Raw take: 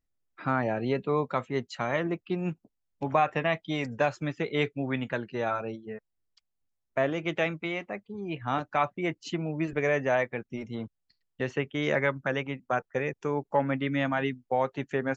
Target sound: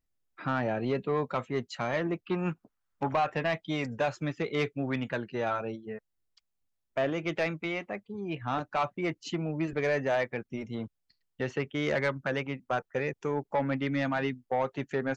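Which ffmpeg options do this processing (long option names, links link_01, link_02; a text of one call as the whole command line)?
ffmpeg -i in.wav -filter_complex "[0:a]asoftclip=type=tanh:threshold=-20dB,asettb=1/sr,asplit=3[link_01][link_02][link_03];[link_01]atrim=end=2.274[link_04];[link_02]atrim=start=2.27:end=3.09,asetpts=PTS-STARTPTS,afade=type=in:duration=0.004:curve=qsin,afade=type=out:start_time=0.816:duration=0.004:curve=qsin,equalizer=frequency=1300:width=1.3:gain=14[link_05];[link_03]atrim=start=3.086[link_06];[link_04][link_05]acrossfade=duration=0.004:curve1=hsin:curve2=qsin[link_07];[link_07][link_06]acrossfade=duration=0.004:curve1=qsin:curve2=hsin" out.wav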